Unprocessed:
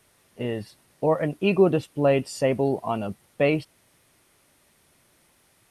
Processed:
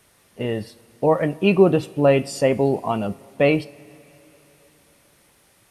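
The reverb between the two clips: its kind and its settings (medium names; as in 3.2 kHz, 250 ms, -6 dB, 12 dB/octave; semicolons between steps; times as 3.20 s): two-slope reverb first 0.35 s, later 3.8 s, from -19 dB, DRR 13.5 dB; trim +4 dB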